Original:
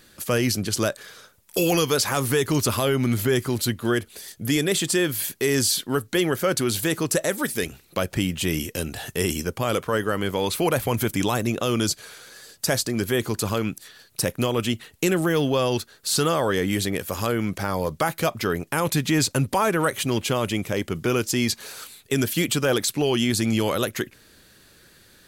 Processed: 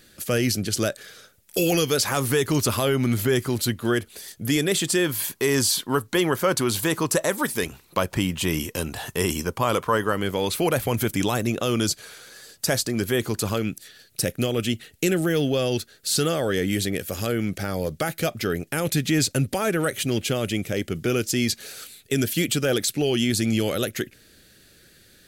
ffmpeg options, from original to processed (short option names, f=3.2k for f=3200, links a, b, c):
-af "asetnsamples=n=441:p=0,asendcmd='2.03 equalizer g -1;5.06 equalizer g 8.5;10.13 equalizer g -3;13.57 equalizer g -14.5',equalizer=f=1k:t=o:w=0.48:g=-10"